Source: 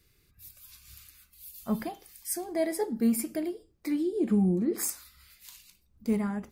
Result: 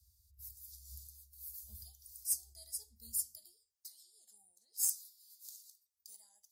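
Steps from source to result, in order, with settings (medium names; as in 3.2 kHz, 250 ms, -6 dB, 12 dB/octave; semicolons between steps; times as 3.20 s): inverse Chebyshev band-stop 150–2600 Hz, stop band 40 dB; Chebyshev shaper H 3 -20 dB, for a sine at -17 dBFS; high-pass sweep 73 Hz -> 800 Hz, 3.14–3.89 s; trim +2 dB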